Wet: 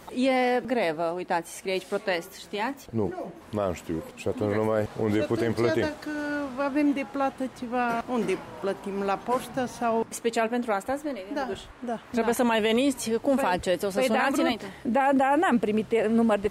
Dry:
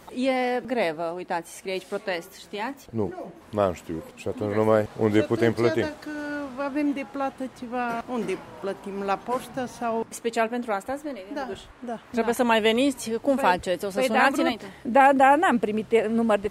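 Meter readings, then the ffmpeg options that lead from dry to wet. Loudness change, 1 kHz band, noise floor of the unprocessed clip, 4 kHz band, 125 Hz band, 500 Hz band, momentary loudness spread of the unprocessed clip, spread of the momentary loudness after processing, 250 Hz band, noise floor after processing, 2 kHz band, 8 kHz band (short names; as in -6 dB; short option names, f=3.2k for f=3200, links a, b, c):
-2.0 dB, -3.5 dB, -49 dBFS, -1.5 dB, -1.0 dB, -1.5 dB, 13 LU, 9 LU, 0.0 dB, -47 dBFS, -3.0 dB, +1.0 dB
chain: -af "alimiter=limit=-16.5dB:level=0:latency=1:release=22,volume=1.5dB"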